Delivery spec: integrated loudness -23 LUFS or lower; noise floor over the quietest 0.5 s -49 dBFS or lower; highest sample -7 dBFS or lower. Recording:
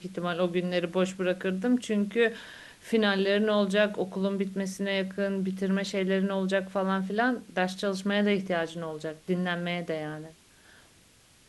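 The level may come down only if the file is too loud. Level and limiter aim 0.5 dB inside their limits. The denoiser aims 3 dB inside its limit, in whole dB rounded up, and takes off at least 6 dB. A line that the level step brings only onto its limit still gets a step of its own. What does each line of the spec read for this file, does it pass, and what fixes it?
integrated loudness -28.5 LUFS: OK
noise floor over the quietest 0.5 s -59 dBFS: OK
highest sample -10.5 dBFS: OK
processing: none

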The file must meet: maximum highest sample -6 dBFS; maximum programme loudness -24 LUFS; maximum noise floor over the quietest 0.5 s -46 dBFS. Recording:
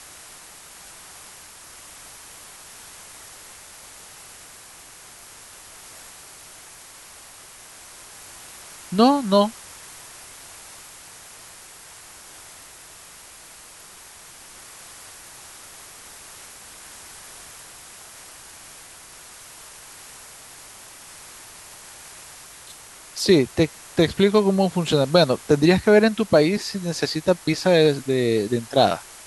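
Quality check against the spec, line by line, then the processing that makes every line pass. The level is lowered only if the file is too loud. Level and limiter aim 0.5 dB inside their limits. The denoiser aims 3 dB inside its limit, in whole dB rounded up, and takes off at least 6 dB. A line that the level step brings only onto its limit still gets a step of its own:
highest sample -4.0 dBFS: fail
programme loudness -19.5 LUFS: fail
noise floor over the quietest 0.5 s -45 dBFS: fail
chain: gain -5 dB

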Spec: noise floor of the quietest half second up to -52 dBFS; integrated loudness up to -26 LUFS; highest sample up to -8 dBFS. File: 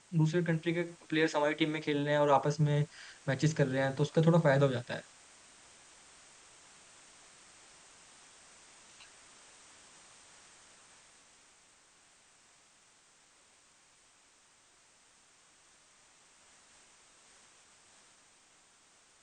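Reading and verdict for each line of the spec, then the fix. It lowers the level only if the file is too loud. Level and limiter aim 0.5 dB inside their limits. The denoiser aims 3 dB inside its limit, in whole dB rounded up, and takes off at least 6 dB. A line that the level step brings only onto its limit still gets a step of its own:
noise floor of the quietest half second -65 dBFS: OK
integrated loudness -30.5 LUFS: OK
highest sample -14.0 dBFS: OK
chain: none

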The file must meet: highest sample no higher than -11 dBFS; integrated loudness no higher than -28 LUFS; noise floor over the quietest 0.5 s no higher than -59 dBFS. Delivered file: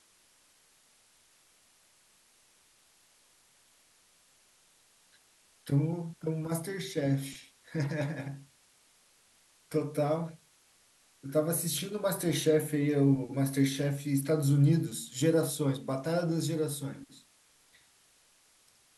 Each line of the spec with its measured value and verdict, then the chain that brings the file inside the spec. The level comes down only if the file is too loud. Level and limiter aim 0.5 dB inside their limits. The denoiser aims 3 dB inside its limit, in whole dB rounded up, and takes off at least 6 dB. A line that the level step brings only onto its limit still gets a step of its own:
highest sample -14.5 dBFS: OK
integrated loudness -31.0 LUFS: OK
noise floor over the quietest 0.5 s -65 dBFS: OK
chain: none

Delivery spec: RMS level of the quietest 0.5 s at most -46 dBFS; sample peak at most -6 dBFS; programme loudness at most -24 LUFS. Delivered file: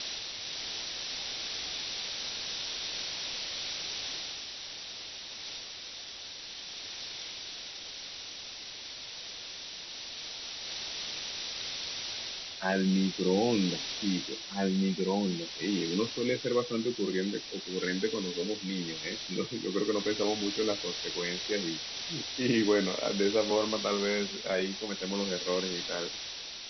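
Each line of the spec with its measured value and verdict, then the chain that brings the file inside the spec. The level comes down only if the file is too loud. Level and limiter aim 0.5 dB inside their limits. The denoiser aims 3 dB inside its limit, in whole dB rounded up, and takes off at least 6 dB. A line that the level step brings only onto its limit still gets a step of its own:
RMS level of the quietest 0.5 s -44 dBFS: fail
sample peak -14.5 dBFS: OK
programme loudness -33.0 LUFS: OK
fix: denoiser 6 dB, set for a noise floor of -44 dBFS

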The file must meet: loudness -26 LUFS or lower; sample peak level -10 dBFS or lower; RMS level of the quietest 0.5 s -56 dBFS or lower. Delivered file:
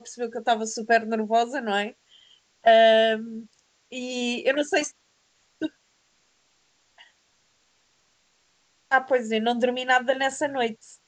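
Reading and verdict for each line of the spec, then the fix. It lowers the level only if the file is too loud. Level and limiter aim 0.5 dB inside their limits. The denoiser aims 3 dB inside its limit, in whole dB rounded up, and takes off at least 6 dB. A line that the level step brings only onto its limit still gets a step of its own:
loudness -23.5 LUFS: fail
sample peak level -7.0 dBFS: fail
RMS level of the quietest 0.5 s -66 dBFS: OK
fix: gain -3 dB; limiter -10.5 dBFS

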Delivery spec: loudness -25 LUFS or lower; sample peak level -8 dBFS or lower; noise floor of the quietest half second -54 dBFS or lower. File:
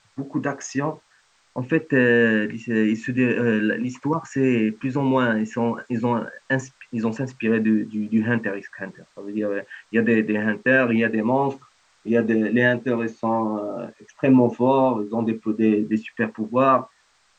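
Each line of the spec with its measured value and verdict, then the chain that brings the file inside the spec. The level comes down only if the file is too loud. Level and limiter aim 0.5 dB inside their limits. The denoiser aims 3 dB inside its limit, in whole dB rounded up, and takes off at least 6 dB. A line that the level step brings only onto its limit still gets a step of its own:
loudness -22.0 LUFS: fail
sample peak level -5.5 dBFS: fail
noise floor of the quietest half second -61 dBFS: OK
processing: gain -3.5 dB

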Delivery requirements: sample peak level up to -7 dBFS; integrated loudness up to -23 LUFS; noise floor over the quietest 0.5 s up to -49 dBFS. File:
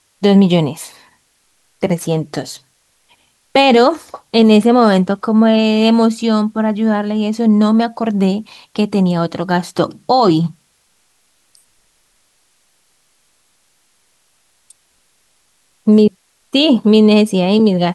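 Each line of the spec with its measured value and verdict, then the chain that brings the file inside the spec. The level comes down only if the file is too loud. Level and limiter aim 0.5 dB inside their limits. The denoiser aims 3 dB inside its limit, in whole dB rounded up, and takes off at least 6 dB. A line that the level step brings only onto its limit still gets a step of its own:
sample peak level -2.5 dBFS: fail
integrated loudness -13.5 LUFS: fail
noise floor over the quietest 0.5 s -59 dBFS: OK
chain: gain -10 dB

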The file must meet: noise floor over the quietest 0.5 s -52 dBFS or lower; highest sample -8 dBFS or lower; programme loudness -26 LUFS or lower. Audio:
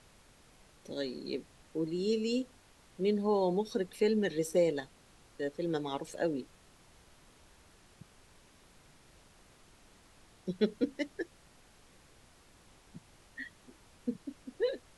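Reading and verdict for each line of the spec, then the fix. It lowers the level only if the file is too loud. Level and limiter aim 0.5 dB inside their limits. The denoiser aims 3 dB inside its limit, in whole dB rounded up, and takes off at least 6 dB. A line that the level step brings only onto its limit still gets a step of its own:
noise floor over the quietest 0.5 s -61 dBFS: OK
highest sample -16.0 dBFS: OK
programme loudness -34.5 LUFS: OK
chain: none

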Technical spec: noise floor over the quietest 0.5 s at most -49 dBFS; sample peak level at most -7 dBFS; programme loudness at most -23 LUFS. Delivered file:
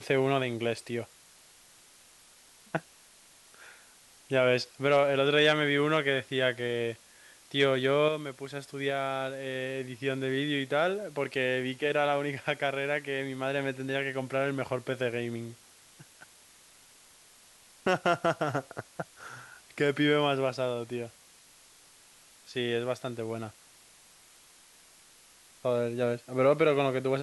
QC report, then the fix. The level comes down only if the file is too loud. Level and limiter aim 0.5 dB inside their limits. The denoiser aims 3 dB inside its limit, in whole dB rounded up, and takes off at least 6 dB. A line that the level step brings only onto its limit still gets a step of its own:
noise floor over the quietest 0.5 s -58 dBFS: OK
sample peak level -11.0 dBFS: OK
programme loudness -29.5 LUFS: OK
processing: none

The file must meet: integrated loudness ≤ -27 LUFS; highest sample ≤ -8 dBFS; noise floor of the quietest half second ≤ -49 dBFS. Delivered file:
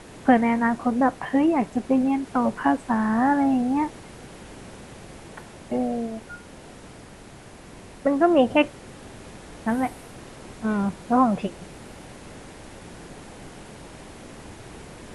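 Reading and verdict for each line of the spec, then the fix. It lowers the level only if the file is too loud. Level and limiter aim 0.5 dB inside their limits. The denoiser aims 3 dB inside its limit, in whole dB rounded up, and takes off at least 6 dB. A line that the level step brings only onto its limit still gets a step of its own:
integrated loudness -23.0 LUFS: fail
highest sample -6.0 dBFS: fail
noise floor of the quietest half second -45 dBFS: fail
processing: gain -4.5 dB

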